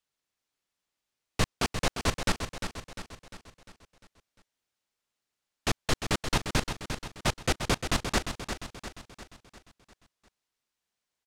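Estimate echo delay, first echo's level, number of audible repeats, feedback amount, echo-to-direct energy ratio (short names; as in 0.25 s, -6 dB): 0.35 s, -8.0 dB, 5, 51%, -6.5 dB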